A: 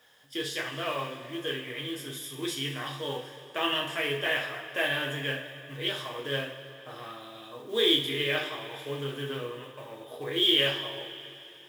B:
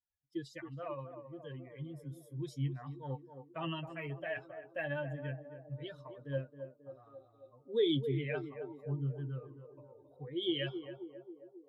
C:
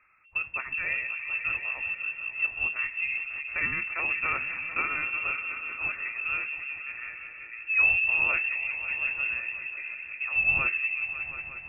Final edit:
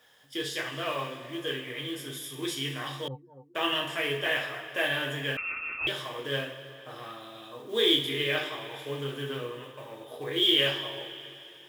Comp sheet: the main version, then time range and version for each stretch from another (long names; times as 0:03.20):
A
0:03.08–0:03.55: punch in from B
0:05.37–0:05.87: punch in from C